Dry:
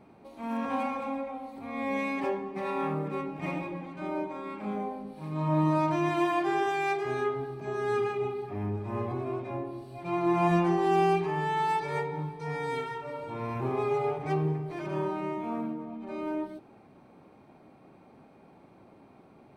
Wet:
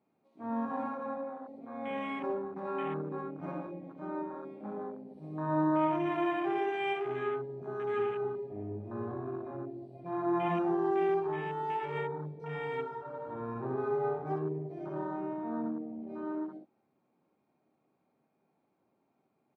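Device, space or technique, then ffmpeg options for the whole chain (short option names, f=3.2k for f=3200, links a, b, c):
over-cleaned archive recording: -filter_complex "[0:a]asettb=1/sr,asplit=3[a][b][c];[a]atrim=end=5.084[d];[b]atrim=start=5.08:end=5.63,asetpts=PTS-STARTPTS,afade=t=in:d=0.004:c=qsin,afade=t=out:st=0.546:d=0.004:c=qsin,highshelf=f=5.3k:g=7[e];[c]atrim=start=5.626[f];[d][e]acrossfade=d=0.004:c1=hsin:c2=qsin[g];[g][f]acrossfade=d=0.004:c1=qsin:c2=hsin,highpass=130,lowpass=7.8k,aecho=1:1:13|61:0.188|0.631,afwtdn=0.02,volume=-5.5dB"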